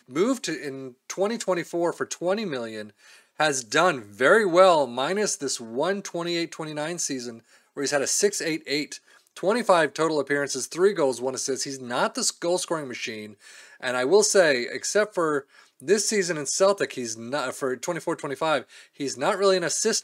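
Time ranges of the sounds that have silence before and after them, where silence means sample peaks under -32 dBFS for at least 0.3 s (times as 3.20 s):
3.40–7.33 s
7.77–8.96 s
9.37–13.26 s
13.83–15.40 s
15.80–18.61 s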